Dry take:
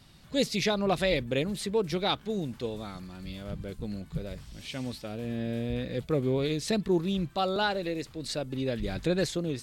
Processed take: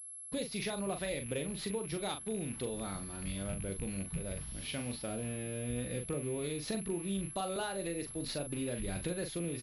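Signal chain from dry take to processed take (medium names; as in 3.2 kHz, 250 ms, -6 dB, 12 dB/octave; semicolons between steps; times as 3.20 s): rattle on loud lows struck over -36 dBFS, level -36 dBFS; compression 6:1, threshold -35 dBFS, peak gain reduction 13.5 dB; gate -48 dBFS, range -41 dB; doubling 41 ms -7 dB; class-D stage that switches slowly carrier 11 kHz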